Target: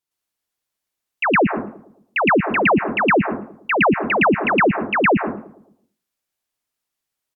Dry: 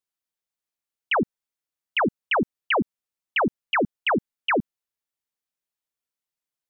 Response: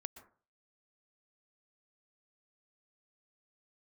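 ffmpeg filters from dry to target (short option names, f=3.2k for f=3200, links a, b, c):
-filter_complex "[0:a]asetrate=40131,aresample=44100,asplit=2[a][b];[b]adelay=110,lowpass=f=1.1k:p=1,volume=-16.5dB,asplit=2[c][d];[d]adelay=110,lowpass=f=1.1k:p=1,volume=0.51,asplit=2[e][f];[f]adelay=110,lowpass=f=1.1k:p=1,volume=0.51,asplit=2[g][h];[h]adelay=110,lowpass=f=1.1k:p=1,volume=0.51,asplit=2[i][j];[j]adelay=110,lowpass=f=1.1k:p=1,volume=0.51[k];[a][c][e][g][i][k]amix=inputs=6:normalize=0,asplit=2[l][m];[1:a]atrim=start_sample=2205,adelay=113[n];[m][n]afir=irnorm=-1:irlink=0,volume=8dB[o];[l][o]amix=inputs=2:normalize=0,volume=2.5dB"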